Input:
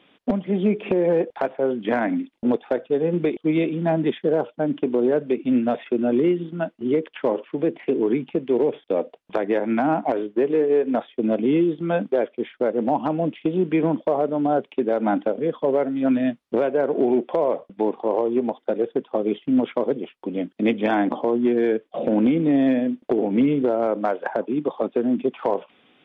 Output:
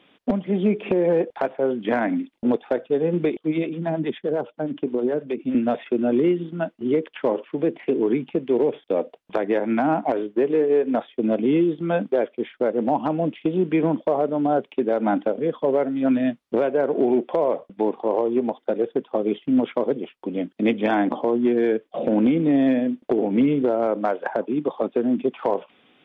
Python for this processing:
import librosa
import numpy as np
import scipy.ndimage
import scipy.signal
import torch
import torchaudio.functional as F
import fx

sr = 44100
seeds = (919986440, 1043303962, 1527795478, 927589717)

y = fx.harmonic_tremolo(x, sr, hz=9.6, depth_pct=70, crossover_hz=460.0, at=(3.39, 5.55))